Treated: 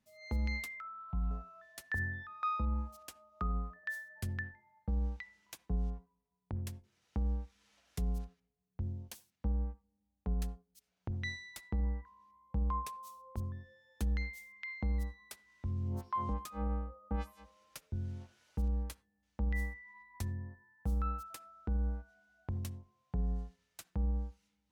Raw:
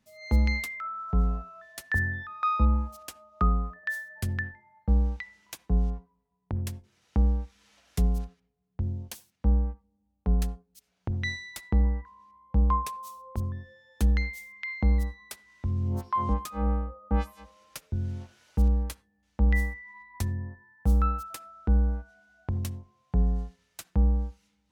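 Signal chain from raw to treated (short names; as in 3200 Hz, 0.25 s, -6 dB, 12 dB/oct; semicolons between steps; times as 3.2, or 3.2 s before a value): limiter -18.5 dBFS, peak gain reduction 6 dB; 0.81–1.31 fixed phaser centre 1700 Hz, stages 6; gain -8 dB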